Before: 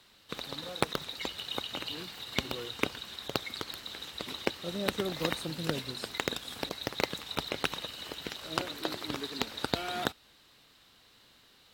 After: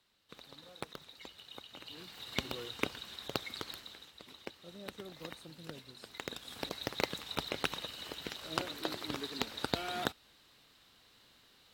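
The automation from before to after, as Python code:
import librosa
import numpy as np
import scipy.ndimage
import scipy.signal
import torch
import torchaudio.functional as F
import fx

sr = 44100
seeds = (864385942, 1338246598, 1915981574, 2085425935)

y = fx.gain(x, sr, db=fx.line((1.72, -14.0), (2.26, -4.0), (3.73, -4.0), (4.14, -14.5), (5.92, -14.5), (6.71, -3.0)))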